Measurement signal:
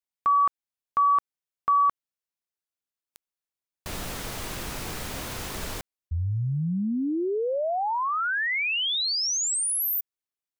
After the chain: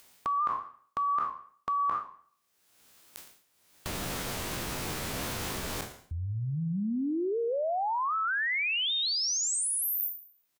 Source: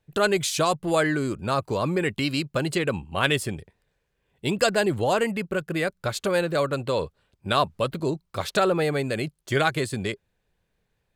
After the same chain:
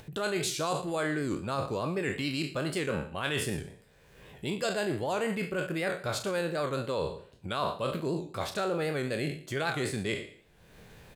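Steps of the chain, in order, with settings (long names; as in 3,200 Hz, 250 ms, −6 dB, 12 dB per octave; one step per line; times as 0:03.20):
peak hold with a decay on every bin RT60 0.41 s
low-shelf EQ 250 Hz +4.5 dB
reversed playback
downward compressor 6 to 1, threshold −28 dBFS
reversed playback
low-shelf EQ 72 Hz −11.5 dB
on a send: single-tap delay 115 ms −18 dB
on the sum: upward compression, threshold −34 dBFS
wow of a warped record 78 rpm, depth 100 cents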